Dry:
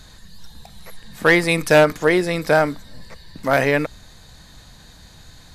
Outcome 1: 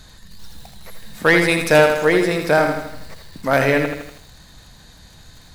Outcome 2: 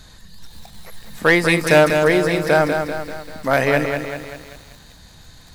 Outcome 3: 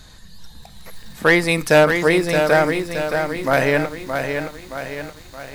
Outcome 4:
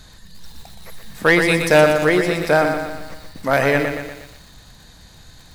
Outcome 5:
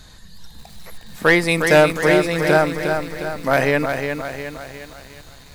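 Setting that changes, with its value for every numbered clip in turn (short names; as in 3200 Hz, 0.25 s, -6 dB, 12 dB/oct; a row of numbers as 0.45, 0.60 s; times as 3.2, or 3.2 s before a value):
lo-fi delay, time: 81, 195, 621, 120, 358 ms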